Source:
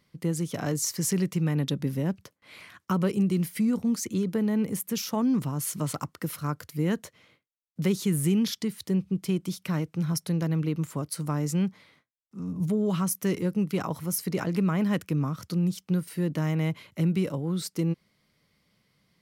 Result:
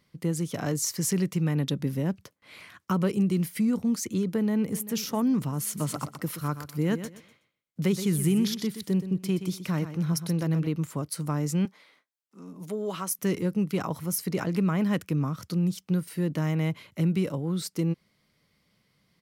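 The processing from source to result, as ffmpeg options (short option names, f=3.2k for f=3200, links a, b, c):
-filter_complex "[0:a]asplit=2[a][b];[b]afade=t=in:st=4.31:d=0.01,afade=t=out:st=4.88:d=0.01,aecho=0:1:390|780|1170|1560:0.158489|0.0713202|0.0320941|0.0144423[c];[a][c]amix=inputs=2:normalize=0,asettb=1/sr,asplit=3[d][e][f];[d]atrim=end=5.654[g];[e]atrim=start=5.65:end=10.67,asetpts=PTS-STARTPTS,afade=t=in:d=0.004:c=qsin,afade=t=out:st=5.016:d=0.004:c=qsin,aecho=1:1:124|248|372:0.282|0.0648|0.0149,atrim=end_sample=221382[h];[f]atrim=start=10.666[i];[g][h]acrossfade=d=0.004:c1=hsin:c2=qsin[j];[j][i]acrossfade=d=0.004:c1=qsin:c2=hsin,asettb=1/sr,asplit=3[k][l][m];[k]atrim=end=11.654[n];[l]atrim=start=11.65:end=13.19,asetpts=PTS-STARTPTS,afade=t=in:d=0.004:c=qsin,afade=t=out:st=1.536:d=0.004:c=qsin,highpass=370[o];[m]atrim=start=13.186[p];[n][o]acrossfade=d=0.004:c1=hsin:c2=qsin[q];[q][p]acrossfade=d=0.004:c1=qsin:c2=hsin"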